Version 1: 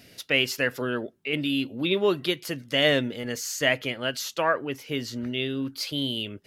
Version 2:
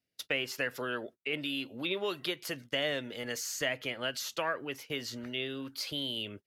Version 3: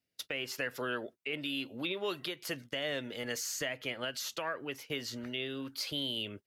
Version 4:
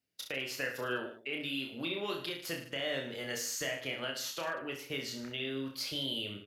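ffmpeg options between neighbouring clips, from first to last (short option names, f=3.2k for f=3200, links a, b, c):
-filter_complex "[0:a]agate=range=-33dB:threshold=-41dB:ratio=16:detection=peak,acrossover=split=480|1800[a][b][c];[a]acompressor=threshold=-41dB:ratio=4[d];[b]acompressor=threshold=-33dB:ratio=4[e];[c]acompressor=threshold=-33dB:ratio=4[f];[d][e][f]amix=inputs=3:normalize=0,volume=-2dB"
-af "alimiter=limit=-24dB:level=0:latency=1:release=223"
-af "aecho=1:1:30|64.5|104.2|149.8|202.3:0.631|0.398|0.251|0.158|0.1,volume=-2dB"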